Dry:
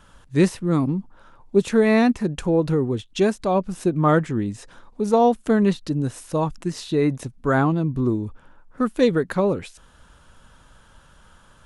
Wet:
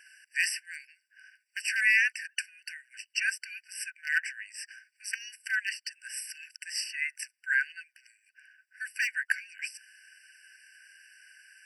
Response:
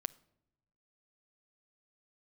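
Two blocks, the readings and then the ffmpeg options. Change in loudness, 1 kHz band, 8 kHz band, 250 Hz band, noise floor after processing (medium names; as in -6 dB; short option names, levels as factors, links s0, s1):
-9.5 dB, under -35 dB, +2.0 dB, under -40 dB, -78 dBFS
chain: -af "aeval=exprs='0.355*(abs(mod(val(0)/0.355+3,4)-2)-1)':c=same,afftfilt=real='re*eq(mod(floor(b*sr/1024/1500),2),1)':imag='im*eq(mod(floor(b*sr/1024/1500),2),1)':win_size=1024:overlap=0.75,volume=2"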